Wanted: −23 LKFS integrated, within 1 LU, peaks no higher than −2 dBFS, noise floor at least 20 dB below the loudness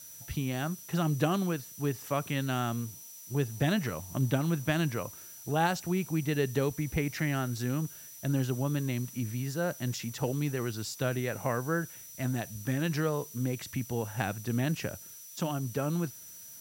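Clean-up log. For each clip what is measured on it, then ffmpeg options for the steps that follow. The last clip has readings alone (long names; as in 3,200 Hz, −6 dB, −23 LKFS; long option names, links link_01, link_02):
interfering tone 5,900 Hz; level of the tone −50 dBFS; background noise floor −48 dBFS; target noise floor −52 dBFS; integrated loudness −32.0 LKFS; sample peak −13.5 dBFS; target loudness −23.0 LKFS
→ -af "bandreject=frequency=5900:width=30"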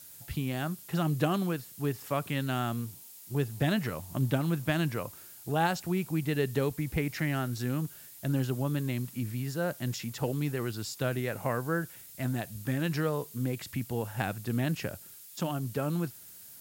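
interfering tone none found; background noise floor −50 dBFS; target noise floor −53 dBFS
→ -af "afftdn=noise_reduction=6:noise_floor=-50"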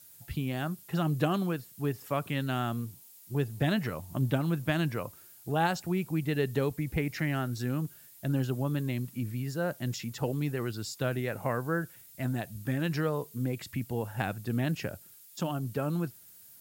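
background noise floor −54 dBFS; integrated loudness −32.5 LKFS; sample peak −13.5 dBFS; target loudness −23.0 LKFS
→ -af "volume=9.5dB"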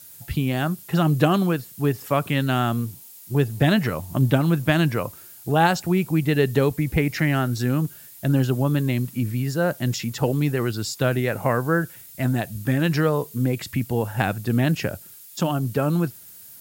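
integrated loudness −23.0 LKFS; sample peak −4.0 dBFS; background noise floor −45 dBFS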